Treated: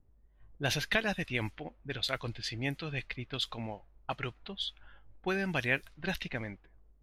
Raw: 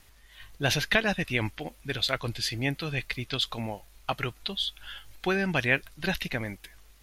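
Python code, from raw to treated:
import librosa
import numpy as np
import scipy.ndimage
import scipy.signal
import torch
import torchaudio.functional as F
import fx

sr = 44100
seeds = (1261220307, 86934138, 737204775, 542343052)

y = fx.env_lowpass(x, sr, base_hz=370.0, full_db=-24.0)
y = F.gain(torch.from_numpy(y), -5.5).numpy()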